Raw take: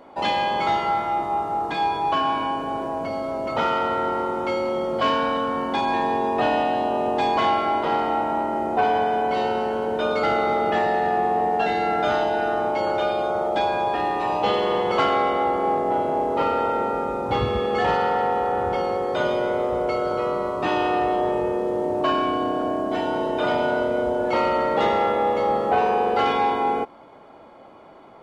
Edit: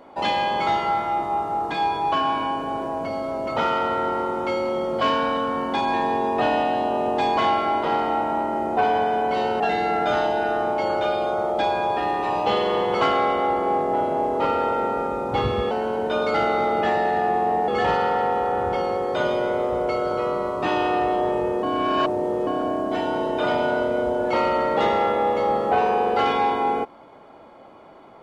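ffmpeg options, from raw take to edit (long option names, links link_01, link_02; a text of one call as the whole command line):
ffmpeg -i in.wav -filter_complex "[0:a]asplit=6[link_01][link_02][link_03][link_04][link_05][link_06];[link_01]atrim=end=9.602[link_07];[link_02]atrim=start=11.568:end=17.682[link_08];[link_03]atrim=start=9.598:end=11.572[link_09];[link_04]atrim=start=17.678:end=21.632[link_10];[link_05]atrim=start=21.628:end=22.472,asetpts=PTS-STARTPTS,areverse[link_11];[link_06]atrim=start=22.468[link_12];[link_07][link_08]acrossfade=duration=0.004:curve1=hsin:curve2=hsin[link_13];[link_13][link_09]acrossfade=duration=0.004:curve1=hsin:curve2=hsin[link_14];[link_14][link_10]acrossfade=duration=0.004:curve1=hsin:curve2=hsin[link_15];[link_15][link_11]acrossfade=duration=0.004:curve1=hsin:curve2=hsin[link_16];[link_16][link_12]acrossfade=duration=0.004:curve1=hsin:curve2=hsin" out.wav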